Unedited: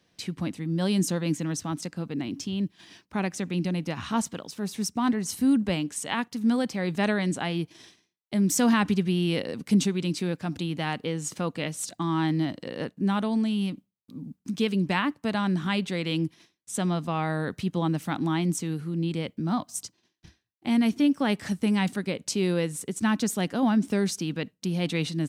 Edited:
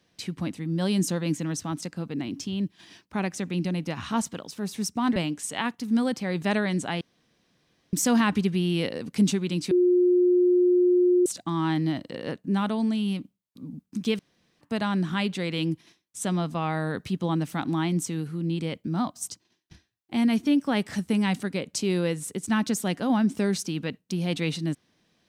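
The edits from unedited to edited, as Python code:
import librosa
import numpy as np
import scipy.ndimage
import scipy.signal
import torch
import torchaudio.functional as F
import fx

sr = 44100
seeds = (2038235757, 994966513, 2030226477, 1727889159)

y = fx.edit(x, sr, fx.cut(start_s=5.16, length_s=0.53),
    fx.room_tone_fill(start_s=7.54, length_s=0.92),
    fx.bleep(start_s=10.24, length_s=1.55, hz=358.0, db=-16.5),
    fx.room_tone_fill(start_s=14.72, length_s=0.42), tone=tone)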